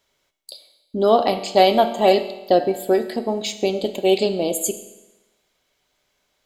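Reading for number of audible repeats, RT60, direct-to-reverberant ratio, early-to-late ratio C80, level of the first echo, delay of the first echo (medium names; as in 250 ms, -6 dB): no echo, 1.0 s, 8.5 dB, 13.5 dB, no echo, no echo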